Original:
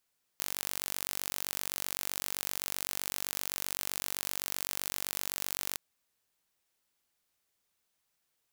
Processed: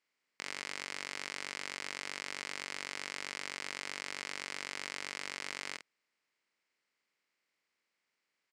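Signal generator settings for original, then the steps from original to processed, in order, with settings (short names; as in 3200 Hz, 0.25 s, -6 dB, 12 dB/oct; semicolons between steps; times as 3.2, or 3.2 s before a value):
pulse train 47.8/s, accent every 0, -7.5 dBFS 5.36 s
bin magnitudes rounded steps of 30 dB; speaker cabinet 210–6600 Hz, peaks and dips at 730 Hz -5 dB, 2100 Hz +8 dB, 3600 Hz -6 dB, 6200 Hz -7 dB; doubler 49 ms -10 dB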